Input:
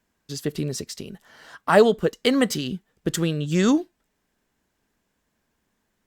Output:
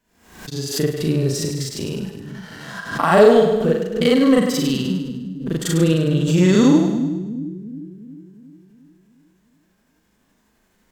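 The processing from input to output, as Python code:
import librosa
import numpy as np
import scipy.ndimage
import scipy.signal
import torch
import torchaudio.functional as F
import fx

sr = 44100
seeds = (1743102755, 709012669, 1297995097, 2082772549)

p1 = fx.recorder_agc(x, sr, target_db=-10.5, rise_db_per_s=6.0, max_gain_db=30)
p2 = fx.stretch_grains(p1, sr, factor=1.8, grain_ms=169.0)
p3 = fx.hpss(p2, sr, part='harmonic', gain_db=9)
p4 = fx.leveller(p3, sr, passes=1)
p5 = p4 + fx.echo_split(p4, sr, split_hz=300.0, low_ms=358, high_ms=102, feedback_pct=52, wet_db=-7, dry=0)
p6 = fx.pre_swell(p5, sr, db_per_s=86.0)
y = p6 * 10.0 ** (-6.5 / 20.0)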